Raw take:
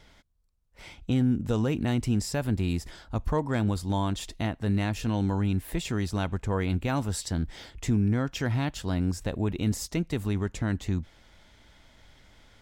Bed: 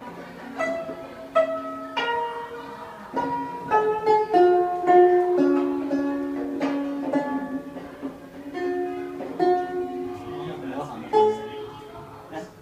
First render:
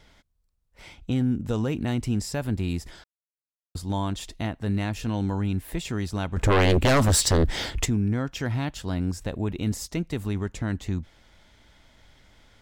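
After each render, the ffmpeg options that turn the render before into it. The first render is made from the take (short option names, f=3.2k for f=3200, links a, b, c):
-filter_complex "[0:a]asplit=3[a][b][c];[a]afade=t=out:st=6.36:d=0.02[d];[b]aeval=exprs='0.178*sin(PI/2*3.55*val(0)/0.178)':c=same,afade=t=in:st=6.36:d=0.02,afade=t=out:st=7.84:d=0.02[e];[c]afade=t=in:st=7.84:d=0.02[f];[d][e][f]amix=inputs=3:normalize=0,asplit=3[g][h][i];[g]atrim=end=3.04,asetpts=PTS-STARTPTS,afade=t=out:st=3.036:d=0.004:c=hsin[j];[h]atrim=start=3.04:end=3.75,asetpts=PTS-STARTPTS,volume=0[k];[i]atrim=start=3.75,asetpts=PTS-STARTPTS,afade=t=in:d=0.004:c=hsin[l];[j][k][l]concat=n=3:v=0:a=1"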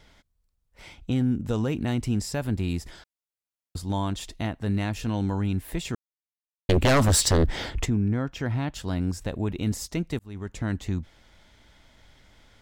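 -filter_complex "[0:a]asettb=1/sr,asplit=3[a][b][c];[a]atrim=end=7.464[d];[b]atrim=start=7.46:end=8.74,asetpts=PTS-STARTPTS,afade=t=in:d=0.004:c=qsin,afade=t=out:st=1.276:d=0.004:c=qsin,highshelf=f=3.5k:g=-8.5[e];[c]atrim=start=8.736[f];[d][e]acrossfade=d=0.004:c1=hsin:c2=qsin[g];[g][f]acrossfade=d=0.004:c1=qsin:c2=hsin,asplit=4[h][i][j][k];[h]atrim=end=5.95,asetpts=PTS-STARTPTS,afade=t=out:st=5.946:d=0.004:c=hsin[l];[i]atrim=start=5.95:end=6.69,asetpts=PTS-STARTPTS,volume=0[m];[j]atrim=start=6.69:end=10.19,asetpts=PTS-STARTPTS,afade=t=in:d=0.004:c=hsin,afade=t=out:st=3.496:d=0.004:c=hsin[n];[k]atrim=start=10.19,asetpts=PTS-STARTPTS,afade=t=in:d=0.46[o];[l][m][n][o]concat=n=4:v=0:a=1"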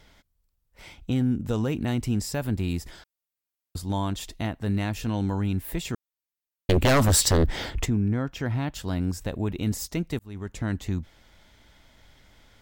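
-af "equalizer=f=16k:t=o:w=0.4:g=11"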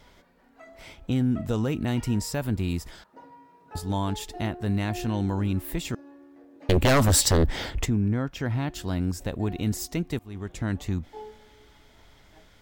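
-filter_complex "[1:a]volume=-23dB[a];[0:a][a]amix=inputs=2:normalize=0"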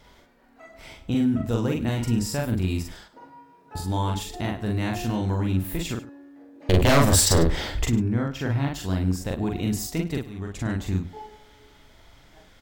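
-filter_complex "[0:a]asplit=2[a][b];[b]adelay=43,volume=-2dB[c];[a][c]amix=inputs=2:normalize=0,aecho=1:1:102:0.158"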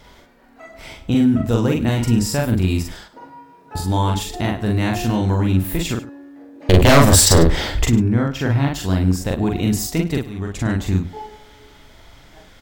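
-af "volume=7dB,alimiter=limit=-2dB:level=0:latency=1"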